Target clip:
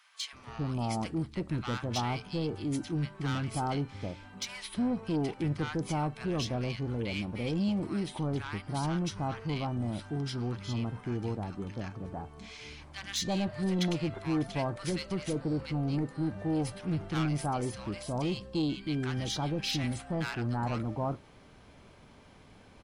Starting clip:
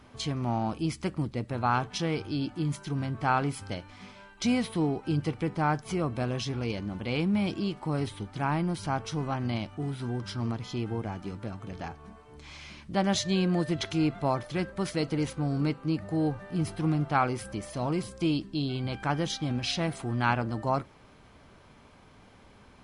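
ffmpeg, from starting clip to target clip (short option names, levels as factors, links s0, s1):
-filter_complex "[0:a]asoftclip=type=tanh:threshold=0.0596,acrossover=split=1200[s0][s1];[s0]adelay=330[s2];[s2][s1]amix=inputs=2:normalize=0"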